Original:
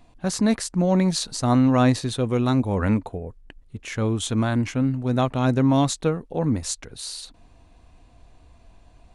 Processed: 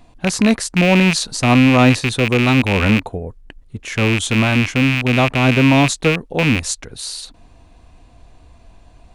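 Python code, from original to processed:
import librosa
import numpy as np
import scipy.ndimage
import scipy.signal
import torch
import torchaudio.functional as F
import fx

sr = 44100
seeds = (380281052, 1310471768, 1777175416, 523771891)

y = fx.rattle_buzz(x, sr, strikes_db=-28.0, level_db=-13.0)
y = y * librosa.db_to_amplitude(6.0)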